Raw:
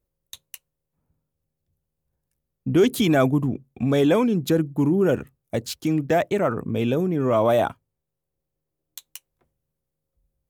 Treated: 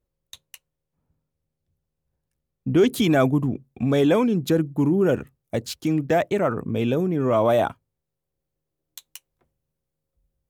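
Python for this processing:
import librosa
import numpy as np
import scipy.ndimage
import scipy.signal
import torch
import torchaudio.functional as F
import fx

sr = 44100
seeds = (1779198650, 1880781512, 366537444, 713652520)

y = fx.high_shelf(x, sr, hz=8100.0, db=fx.steps((0.0, -9.0), (2.87, -3.0)))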